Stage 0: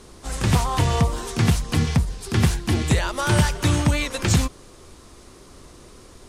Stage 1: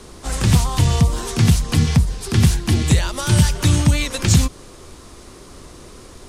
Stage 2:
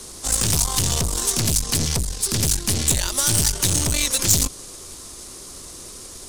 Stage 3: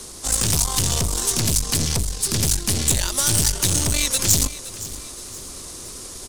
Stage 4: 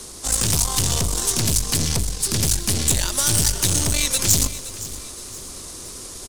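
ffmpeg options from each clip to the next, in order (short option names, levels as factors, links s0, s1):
-filter_complex "[0:a]acrossover=split=260|3000[s0][s1][s2];[s1]acompressor=threshold=0.0251:ratio=6[s3];[s0][s3][s2]amix=inputs=3:normalize=0,volume=1.88"
-af "aeval=exprs='(tanh(8.91*val(0)+0.6)-tanh(0.6))/8.91':c=same,bass=f=250:g=-2,treble=f=4000:g=15"
-af "aecho=1:1:517|1034|1551:0.158|0.0602|0.0229,areverse,acompressor=mode=upward:threshold=0.0316:ratio=2.5,areverse"
-af "aecho=1:1:122|244|366|488|610:0.141|0.0749|0.0397|0.021|0.0111"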